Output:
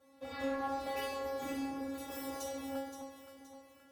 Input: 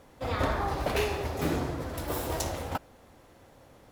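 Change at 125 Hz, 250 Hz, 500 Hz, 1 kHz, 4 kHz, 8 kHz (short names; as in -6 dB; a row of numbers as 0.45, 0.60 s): -25.0, -5.0, -7.0, -7.0, -9.0, -9.0 dB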